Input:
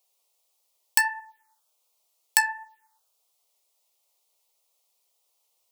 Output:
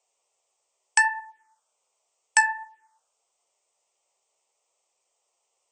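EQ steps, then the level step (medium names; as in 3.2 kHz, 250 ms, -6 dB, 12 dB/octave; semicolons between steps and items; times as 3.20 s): brick-wall FIR low-pass 8.7 kHz; peaking EQ 4.1 kHz -12.5 dB 0.75 oct; +4.5 dB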